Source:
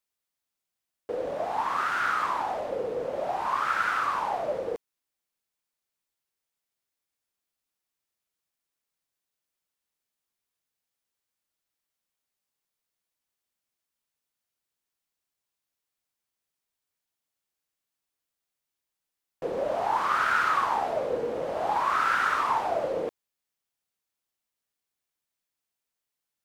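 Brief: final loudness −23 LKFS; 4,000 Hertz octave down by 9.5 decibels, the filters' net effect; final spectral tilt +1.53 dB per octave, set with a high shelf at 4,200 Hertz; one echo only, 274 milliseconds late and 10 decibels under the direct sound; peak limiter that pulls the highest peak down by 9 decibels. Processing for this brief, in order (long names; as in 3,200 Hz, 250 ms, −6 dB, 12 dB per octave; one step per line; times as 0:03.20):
parametric band 4,000 Hz −8.5 dB
high-shelf EQ 4,200 Hz −9 dB
brickwall limiter −23.5 dBFS
single-tap delay 274 ms −10 dB
level +8.5 dB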